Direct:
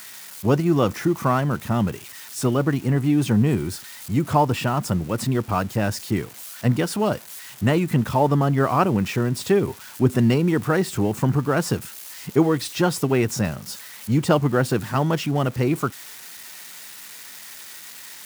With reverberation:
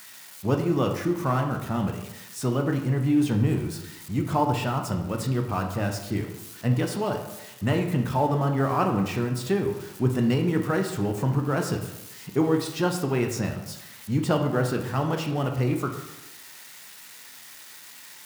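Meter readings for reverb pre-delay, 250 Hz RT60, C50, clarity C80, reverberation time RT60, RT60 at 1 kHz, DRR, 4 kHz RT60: 15 ms, 1.0 s, 7.0 dB, 9.5 dB, 0.95 s, 0.95 s, 3.5 dB, 0.65 s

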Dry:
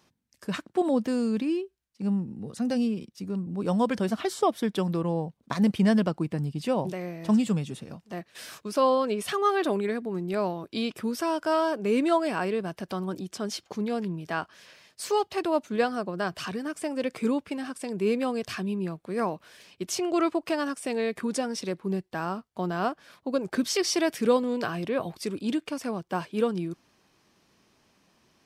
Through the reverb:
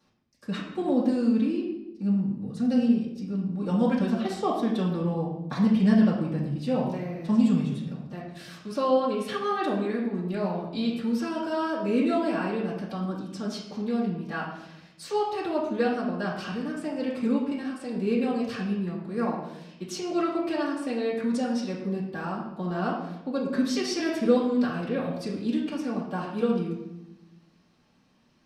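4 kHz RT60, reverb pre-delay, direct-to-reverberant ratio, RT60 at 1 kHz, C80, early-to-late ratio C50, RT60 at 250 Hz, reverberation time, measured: 0.70 s, 3 ms, -9.0 dB, 0.85 s, 6.0 dB, 3.5 dB, 1.4 s, 0.95 s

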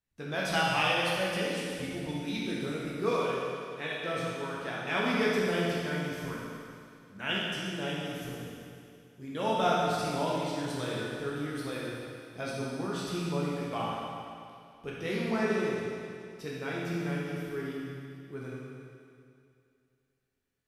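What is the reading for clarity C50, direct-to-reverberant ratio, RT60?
-2.5 dB, -6.0 dB, 2.4 s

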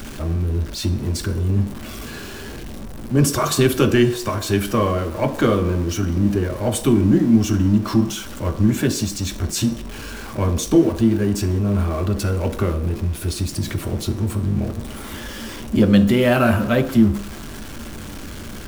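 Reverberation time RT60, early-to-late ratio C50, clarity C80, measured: 0.70 s, 12.0 dB, 14.0 dB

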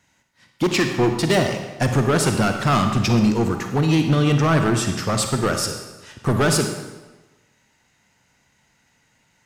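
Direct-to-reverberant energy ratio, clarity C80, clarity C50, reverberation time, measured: 5.0 dB, 7.5 dB, 5.5 dB, 1.2 s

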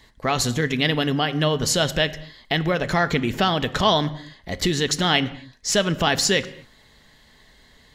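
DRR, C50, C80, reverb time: 11.0 dB, 17.0 dB, 18.5 dB, no single decay rate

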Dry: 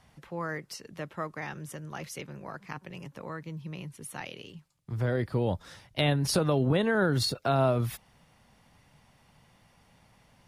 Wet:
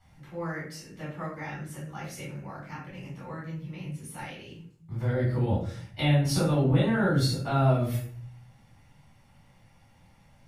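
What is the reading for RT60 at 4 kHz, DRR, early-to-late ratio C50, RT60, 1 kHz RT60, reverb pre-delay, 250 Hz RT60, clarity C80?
0.35 s, -9.0 dB, 3.5 dB, 0.50 s, 0.45 s, 3 ms, 0.80 s, 8.5 dB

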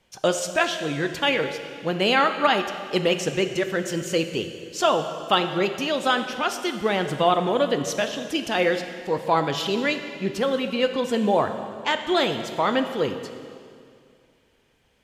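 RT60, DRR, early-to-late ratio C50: 2.3 s, 7.0 dB, 8.5 dB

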